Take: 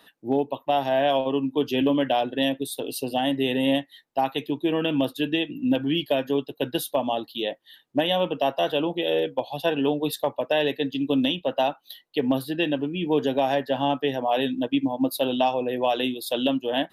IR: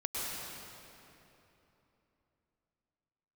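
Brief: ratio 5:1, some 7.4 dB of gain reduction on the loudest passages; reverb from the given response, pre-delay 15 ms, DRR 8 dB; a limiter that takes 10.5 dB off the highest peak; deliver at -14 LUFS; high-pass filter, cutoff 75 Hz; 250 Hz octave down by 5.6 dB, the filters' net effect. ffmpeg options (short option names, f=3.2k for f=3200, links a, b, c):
-filter_complex "[0:a]highpass=75,equalizer=f=250:t=o:g=-6.5,acompressor=threshold=-27dB:ratio=5,alimiter=level_in=1.5dB:limit=-24dB:level=0:latency=1,volume=-1.5dB,asplit=2[a][b];[1:a]atrim=start_sample=2205,adelay=15[c];[b][c]afir=irnorm=-1:irlink=0,volume=-13dB[d];[a][d]amix=inputs=2:normalize=0,volume=21dB"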